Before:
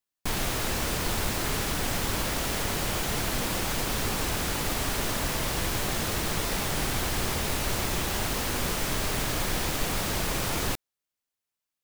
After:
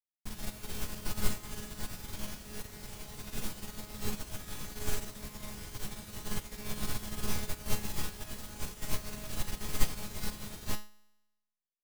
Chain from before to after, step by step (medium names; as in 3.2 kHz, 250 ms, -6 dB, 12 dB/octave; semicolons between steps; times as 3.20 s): tone controls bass +8 dB, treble +4 dB; feedback comb 210 Hz, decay 1 s, mix 90%; upward expansion 2.5:1, over -43 dBFS; trim +13 dB